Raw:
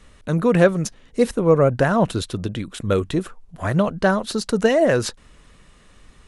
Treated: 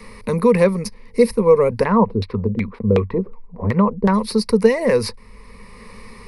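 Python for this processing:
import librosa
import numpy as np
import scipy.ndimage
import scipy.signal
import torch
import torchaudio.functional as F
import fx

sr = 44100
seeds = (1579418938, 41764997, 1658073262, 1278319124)

y = fx.ripple_eq(x, sr, per_octave=0.89, db=16)
y = fx.filter_lfo_lowpass(y, sr, shape='saw_down', hz=2.7, low_hz=290.0, high_hz=3000.0, q=1.4, at=(1.83, 4.13), fade=0.02)
y = fx.band_squash(y, sr, depth_pct=40)
y = y * librosa.db_to_amplitude(-1.5)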